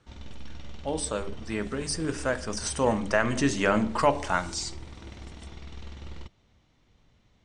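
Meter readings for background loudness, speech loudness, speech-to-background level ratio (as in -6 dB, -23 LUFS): -45.0 LUFS, -28.0 LUFS, 17.0 dB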